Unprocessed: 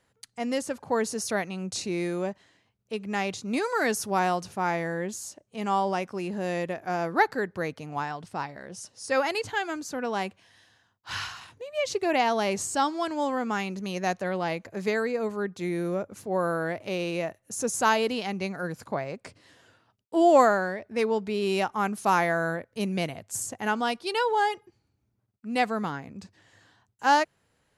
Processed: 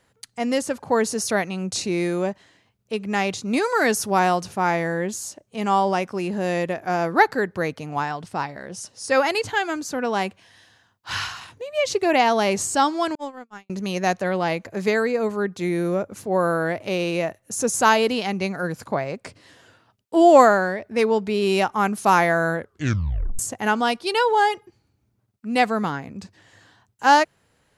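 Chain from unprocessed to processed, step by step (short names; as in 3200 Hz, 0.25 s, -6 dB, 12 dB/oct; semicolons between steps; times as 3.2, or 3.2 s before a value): 13.15–13.7 gate -24 dBFS, range -52 dB; 22.55 tape stop 0.84 s; gain +6 dB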